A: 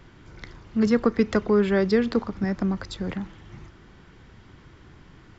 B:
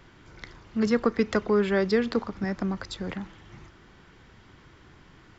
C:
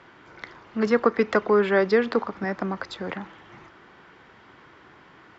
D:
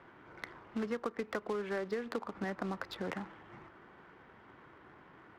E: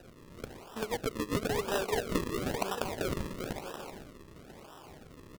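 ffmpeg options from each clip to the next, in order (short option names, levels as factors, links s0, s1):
-af "lowshelf=f=350:g=-5.5"
-af "bandpass=f=980:t=q:w=0.53:csg=0,volume=2.24"
-af "acompressor=threshold=0.0398:ratio=10,acrusher=bits=3:mode=log:mix=0:aa=0.000001,adynamicsmooth=sensitivity=6:basefreq=2300,volume=0.562"
-af "highpass=480,lowpass=4100,aecho=1:1:390|624|764.4|848.6|899.2:0.631|0.398|0.251|0.158|0.1,acrusher=samples=40:mix=1:aa=0.000001:lfo=1:lforange=40:lforate=1,volume=2.11"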